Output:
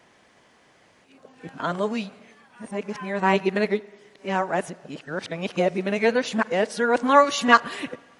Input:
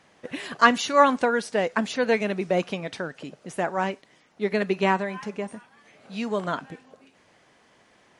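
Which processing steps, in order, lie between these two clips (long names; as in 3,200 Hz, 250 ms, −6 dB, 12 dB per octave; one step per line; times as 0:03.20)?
played backwards from end to start
on a send: convolution reverb RT60 1.3 s, pre-delay 40 ms, DRR 20 dB
on the sum: level +1.5 dB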